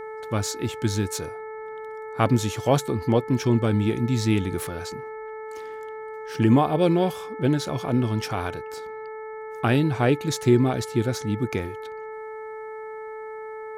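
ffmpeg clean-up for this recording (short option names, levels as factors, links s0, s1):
-af "bandreject=f=436.4:t=h:w=4,bandreject=f=872.8:t=h:w=4,bandreject=f=1309.2:t=h:w=4,bandreject=f=1745.6:t=h:w=4,bandreject=f=2182:t=h:w=4"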